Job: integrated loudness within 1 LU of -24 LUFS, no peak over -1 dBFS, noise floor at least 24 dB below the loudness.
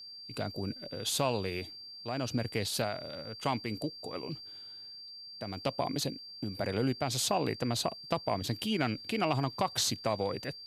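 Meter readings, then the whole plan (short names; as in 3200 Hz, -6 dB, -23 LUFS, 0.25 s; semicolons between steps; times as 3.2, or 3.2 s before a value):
steady tone 4700 Hz; tone level -45 dBFS; loudness -33.5 LUFS; peak -13.5 dBFS; loudness target -24.0 LUFS
-> notch 4700 Hz, Q 30; gain +9.5 dB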